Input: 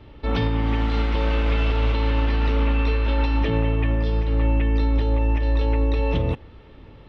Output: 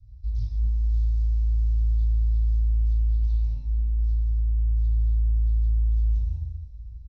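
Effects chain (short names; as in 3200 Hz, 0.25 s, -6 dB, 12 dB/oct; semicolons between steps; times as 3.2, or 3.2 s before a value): inverse Chebyshev band-stop 170–3300 Hz, stop band 40 dB; 3.17–3.57 tone controls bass -7 dB, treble -4 dB; limiter -23.5 dBFS, peak gain reduction 8.5 dB; air absorption 100 m; doubler 29 ms -11 dB; reverb, pre-delay 3 ms, DRR -5 dB; Doppler distortion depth 0.46 ms; gain -1.5 dB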